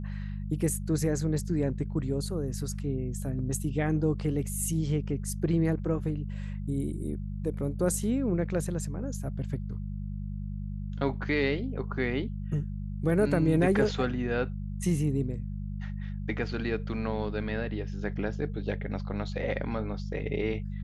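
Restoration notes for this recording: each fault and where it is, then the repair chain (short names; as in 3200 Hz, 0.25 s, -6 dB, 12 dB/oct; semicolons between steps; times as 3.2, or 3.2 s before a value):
hum 50 Hz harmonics 4 -35 dBFS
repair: de-hum 50 Hz, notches 4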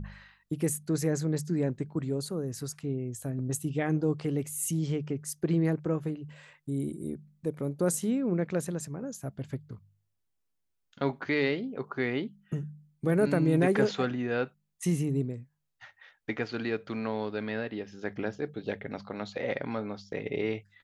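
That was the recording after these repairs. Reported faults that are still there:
none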